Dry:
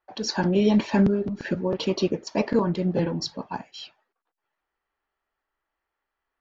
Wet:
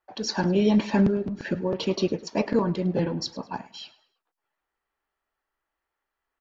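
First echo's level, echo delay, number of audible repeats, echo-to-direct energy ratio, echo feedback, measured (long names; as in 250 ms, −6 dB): −19.0 dB, 105 ms, 2, −18.5 dB, 35%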